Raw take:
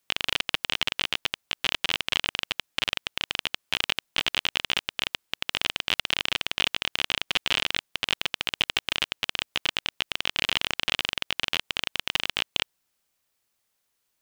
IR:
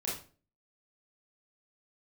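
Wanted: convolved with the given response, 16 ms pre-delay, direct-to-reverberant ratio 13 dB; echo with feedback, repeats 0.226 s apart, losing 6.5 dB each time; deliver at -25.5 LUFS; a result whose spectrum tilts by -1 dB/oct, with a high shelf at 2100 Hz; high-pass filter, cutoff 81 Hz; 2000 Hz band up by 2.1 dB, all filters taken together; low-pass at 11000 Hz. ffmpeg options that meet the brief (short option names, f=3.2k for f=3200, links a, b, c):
-filter_complex "[0:a]highpass=81,lowpass=11k,equalizer=f=2k:t=o:g=5.5,highshelf=f=2.1k:g=-4,aecho=1:1:226|452|678|904|1130|1356:0.473|0.222|0.105|0.0491|0.0231|0.0109,asplit=2[a][b];[1:a]atrim=start_sample=2205,adelay=16[c];[b][c]afir=irnorm=-1:irlink=0,volume=-16.5dB[d];[a][d]amix=inputs=2:normalize=0,volume=0.5dB"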